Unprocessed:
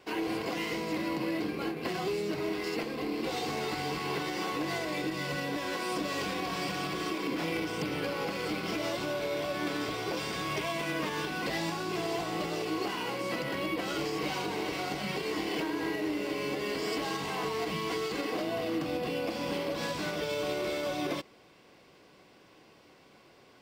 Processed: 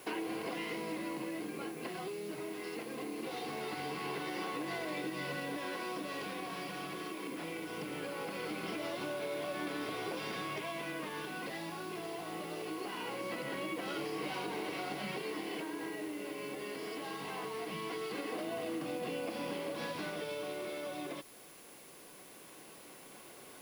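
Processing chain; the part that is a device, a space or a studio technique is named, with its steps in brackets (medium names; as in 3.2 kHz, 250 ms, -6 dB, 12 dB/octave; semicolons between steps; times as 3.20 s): medium wave at night (band-pass 150–4200 Hz; compression, threshold -40 dBFS, peak gain reduction 11 dB; tremolo 0.21 Hz, depth 33%; whistle 10 kHz -64 dBFS; white noise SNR 18 dB); trim +4 dB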